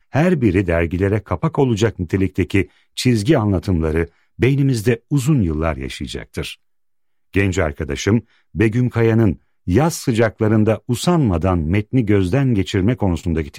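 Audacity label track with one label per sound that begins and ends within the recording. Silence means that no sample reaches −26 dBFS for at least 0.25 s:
2.980000	4.050000	sound
4.400000	6.530000	sound
7.340000	8.190000	sound
8.550000	9.330000	sound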